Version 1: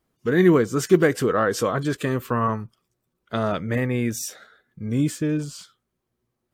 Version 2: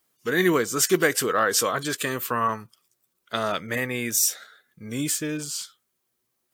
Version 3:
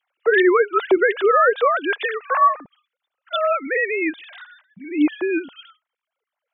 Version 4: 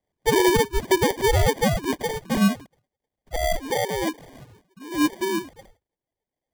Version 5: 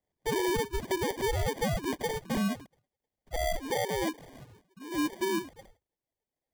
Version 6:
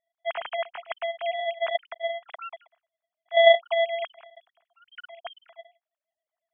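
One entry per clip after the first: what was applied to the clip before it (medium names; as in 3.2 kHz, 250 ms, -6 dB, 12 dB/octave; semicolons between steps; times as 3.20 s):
tilt EQ +3.5 dB/octave
formants replaced by sine waves; peak limiter -15.5 dBFS, peak gain reduction 9 dB; trim +8 dB
sample-and-hold 33×; trim -3.5 dB
peak limiter -19 dBFS, peak gain reduction 8 dB; trim -4.5 dB
formants replaced by sine waves; trim +4.5 dB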